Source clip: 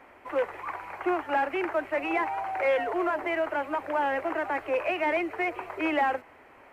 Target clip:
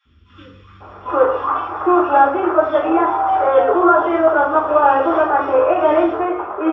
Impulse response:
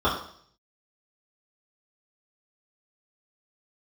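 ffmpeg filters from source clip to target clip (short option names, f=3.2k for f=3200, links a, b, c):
-filter_complex "[0:a]acrossover=split=190|2900[a][b][c];[a]adelay=50[d];[b]adelay=800[e];[d][e][c]amix=inputs=3:normalize=0,aresample=16000,aresample=44100[f];[1:a]atrim=start_sample=2205[g];[f][g]afir=irnorm=-1:irlink=0,dynaudnorm=f=260:g=7:m=11.5dB,volume=-1dB"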